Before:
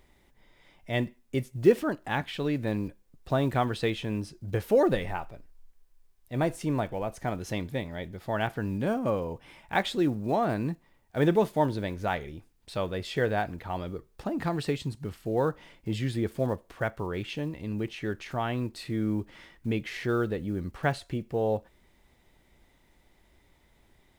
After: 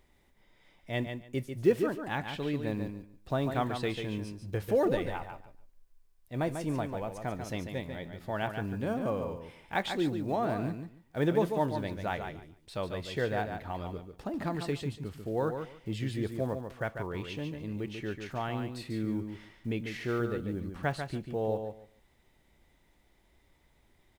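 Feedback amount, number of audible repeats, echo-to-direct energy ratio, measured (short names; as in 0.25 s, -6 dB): 18%, 2, -7.0 dB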